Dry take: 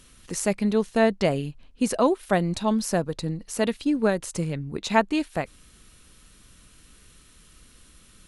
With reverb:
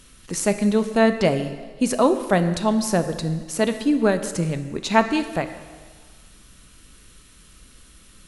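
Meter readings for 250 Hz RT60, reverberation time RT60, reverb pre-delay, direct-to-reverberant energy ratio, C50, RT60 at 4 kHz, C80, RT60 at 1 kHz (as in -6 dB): 1.4 s, 1.5 s, 3 ms, 9.0 dB, 11.0 dB, 1.5 s, 12.0 dB, 1.6 s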